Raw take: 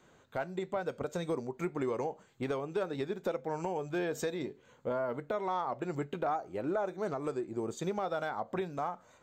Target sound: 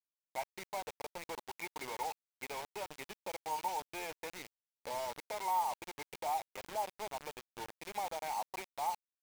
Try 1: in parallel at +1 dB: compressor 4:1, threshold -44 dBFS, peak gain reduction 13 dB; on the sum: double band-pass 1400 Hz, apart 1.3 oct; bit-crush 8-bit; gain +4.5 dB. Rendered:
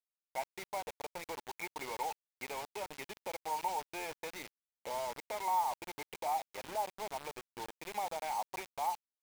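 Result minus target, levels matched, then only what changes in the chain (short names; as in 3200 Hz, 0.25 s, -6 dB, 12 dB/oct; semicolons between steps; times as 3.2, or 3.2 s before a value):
compressor: peak gain reduction -7 dB
change: compressor 4:1, threshold -53 dBFS, peak gain reduction 20 dB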